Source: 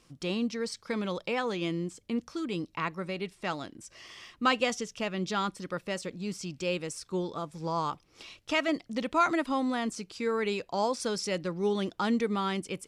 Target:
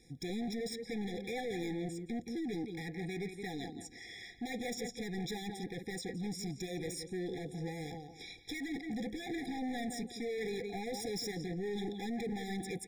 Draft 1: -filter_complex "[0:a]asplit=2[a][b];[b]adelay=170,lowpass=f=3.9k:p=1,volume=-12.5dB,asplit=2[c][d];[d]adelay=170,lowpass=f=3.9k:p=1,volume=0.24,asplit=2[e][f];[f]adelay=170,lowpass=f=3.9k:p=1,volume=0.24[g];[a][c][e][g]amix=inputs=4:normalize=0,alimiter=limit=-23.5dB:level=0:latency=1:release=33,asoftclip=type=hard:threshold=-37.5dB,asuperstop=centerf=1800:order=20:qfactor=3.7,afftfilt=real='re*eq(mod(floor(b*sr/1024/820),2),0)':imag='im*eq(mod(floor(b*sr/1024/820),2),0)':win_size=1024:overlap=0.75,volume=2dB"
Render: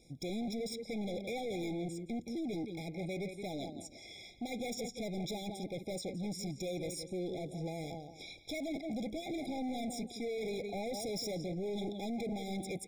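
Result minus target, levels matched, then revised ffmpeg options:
2000 Hz band -4.0 dB
-filter_complex "[0:a]asplit=2[a][b];[b]adelay=170,lowpass=f=3.9k:p=1,volume=-12.5dB,asplit=2[c][d];[d]adelay=170,lowpass=f=3.9k:p=1,volume=0.24,asplit=2[e][f];[f]adelay=170,lowpass=f=3.9k:p=1,volume=0.24[g];[a][c][e][g]amix=inputs=4:normalize=0,alimiter=limit=-23.5dB:level=0:latency=1:release=33,asoftclip=type=hard:threshold=-37.5dB,asuperstop=centerf=600:order=20:qfactor=3.7,afftfilt=real='re*eq(mod(floor(b*sr/1024/820),2),0)':imag='im*eq(mod(floor(b*sr/1024/820),2),0)':win_size=1024:overlap=0.75,volume=2dB"

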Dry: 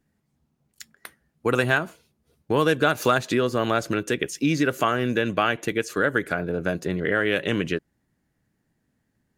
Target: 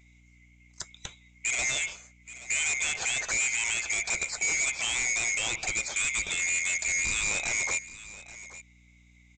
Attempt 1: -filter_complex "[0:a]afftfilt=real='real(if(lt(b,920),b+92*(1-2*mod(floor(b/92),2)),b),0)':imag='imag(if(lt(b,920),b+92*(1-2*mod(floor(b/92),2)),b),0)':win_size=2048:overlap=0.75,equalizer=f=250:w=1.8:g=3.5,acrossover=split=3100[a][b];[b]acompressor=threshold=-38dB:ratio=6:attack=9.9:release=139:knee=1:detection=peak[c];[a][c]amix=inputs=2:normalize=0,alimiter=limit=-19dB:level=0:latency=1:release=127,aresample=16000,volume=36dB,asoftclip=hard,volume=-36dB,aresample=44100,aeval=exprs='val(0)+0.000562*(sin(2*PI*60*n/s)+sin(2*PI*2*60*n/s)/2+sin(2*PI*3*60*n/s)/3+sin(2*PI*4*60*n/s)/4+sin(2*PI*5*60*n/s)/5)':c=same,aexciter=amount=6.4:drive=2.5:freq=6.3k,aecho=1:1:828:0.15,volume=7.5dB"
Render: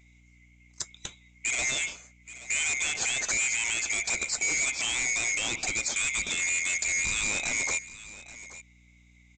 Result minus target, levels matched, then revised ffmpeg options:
compressor: peak gain reduction -8.5 dB; 250 Hz band +3.5 dB
-filter_complex "[0:a]afftfilt=real='real(if(lt(b,920),b+92*(1-2*mod(floor(b/92),2)),b),0)':imag='imag(if(lt(b,920),b+92*(1-2*mod(floor(b/92),2)),b),0)':win_size=2048:overlap=0.75,equalizer=f=250:w=1.8:g=-8,acrossover=split=3100[a][b];[b]acompressor=threshold=-48dB:ratio=6:attack=9.9:release=139:knee=1:detection=peak[c];[a][c]amix=inputs=2:normalize=0,alimiter=limit=-19dB:level=0:latency=1:release=127,aresample=16000,volume=36dB,asoftclip=hard,volume=-36dB,aresample=44100,aeval=exprs='val(0)+0.000562*(sin(2*PI*60*n/s)+sin(2*PI*2*60*n/s)/2+sin(2*PI*3*60*n/s)/3+sin(2*PI*4*60*n/s)/4+sin(2*PI*5*60*n/s)/5)':c=same,aexciter=amount=6.4:drive=2.5:freq=6.3k,aecho=1:1:828:0.15,volume=7.5dB"

